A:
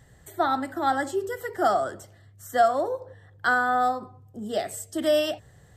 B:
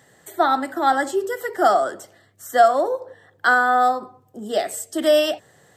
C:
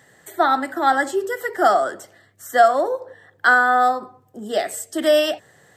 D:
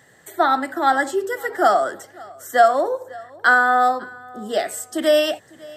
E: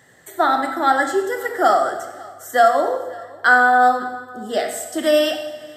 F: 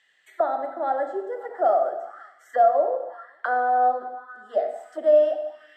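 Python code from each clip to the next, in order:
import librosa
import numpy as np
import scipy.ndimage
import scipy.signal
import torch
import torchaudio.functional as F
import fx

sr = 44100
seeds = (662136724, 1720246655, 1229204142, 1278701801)

y1 = scipy.signal.sosfilt(scipy.signal.butter(2, 260.0, 'highpass', fs=sr, output='sos'), x)
y1 = y1 * 10.0 ** (6.0 / 20.0)
y2 = fx.peak_eq(y1, sr, hz=1800.0, db=4.0, octaves=0.75)
y3 = fx.echo_feedback(y2, sr, ms=551, feedback_pct=30, wet_db=-23)
y4 = fx.rev_plate(y3, sr, seeds[0], rt60_s=1.1, hf_ratio=1.0, predelay_ms=0, drr_db=5.0)
y5 = fx.auto_wah(y4, sr, base_hz=600.0, top_hz=2900.0, q=3.5, full_db=-20.0, direction='down')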